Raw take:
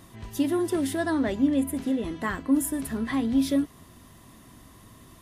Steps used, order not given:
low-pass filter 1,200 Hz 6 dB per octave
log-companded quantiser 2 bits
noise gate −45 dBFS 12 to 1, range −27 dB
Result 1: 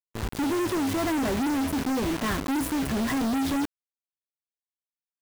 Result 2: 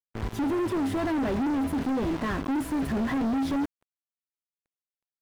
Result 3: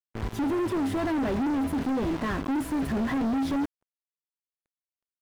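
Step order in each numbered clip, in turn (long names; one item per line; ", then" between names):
low-pass filter, then log-companded quantiser, then noise gate
log-companded quantiser, then noise gate, then low-pass filter
log-companded quantiser, then low-pass filter, then noise gate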